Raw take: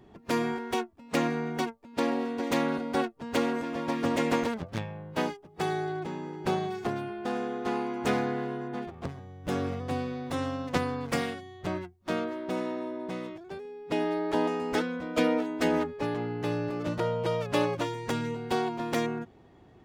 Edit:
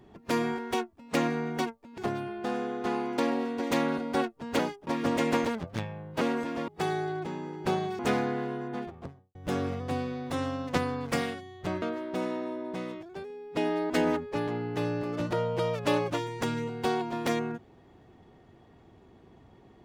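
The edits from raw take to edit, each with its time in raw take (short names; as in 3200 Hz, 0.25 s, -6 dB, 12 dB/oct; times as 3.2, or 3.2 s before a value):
3.39–3.86 swap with 5.2–5.48
6.79–7.99 move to 1.98
8.79–9.35 studio fade out
11.82–12.17 cut
14.25–15.57 cut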